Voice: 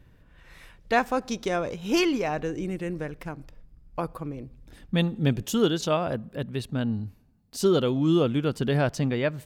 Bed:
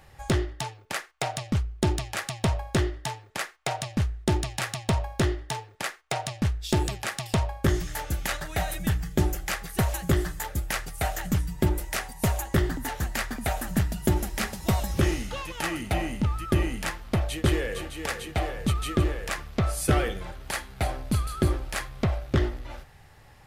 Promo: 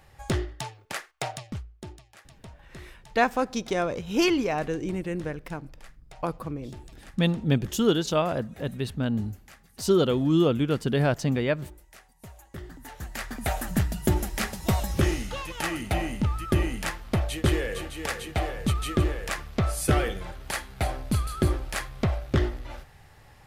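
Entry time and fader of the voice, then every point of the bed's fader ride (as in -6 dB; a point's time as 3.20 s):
2.25 s, +0.5 dB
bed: 1.26 s -2.5 dB
2.02 s -21.5 dB
12.35 s -21.5 dB
13.48 s 0 dB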